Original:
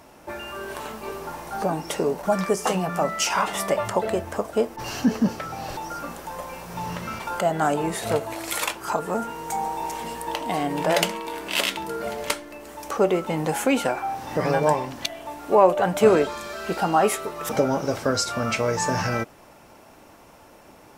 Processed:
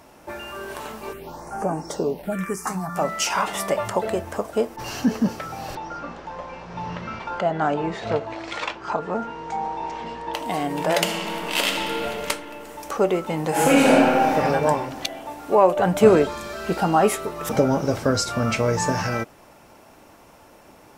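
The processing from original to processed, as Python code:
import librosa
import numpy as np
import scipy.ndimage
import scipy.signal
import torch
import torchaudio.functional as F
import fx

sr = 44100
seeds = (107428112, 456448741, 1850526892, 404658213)

y = fx.phaser_stages(x, sr, stages=4, low_hz=430.0, high_hz=3900.0, hz=fx.line((1.12, 0.81), (2.95, 0.2)), feedback_pct=10, at=(1.12, 2.95), fade=0.02)
y = fx.bessel_lowpass(y, sr, hz=3700.0, order=6, at=(5.75, 10.34))
y = fx.reverb_throw(y, sr, start_s=10.98, length_s=0.99, rt60_s=3.0, drr_db=0.5)
y = fx.reverb_throw(y, sr, start_s=13.48, length_s=0.85, rt60_s=2.4, drr_db=-7.5)
y = fx.low_shelf(y, sr, hz=300.0, db=7.0, at=(15.76, 18.92))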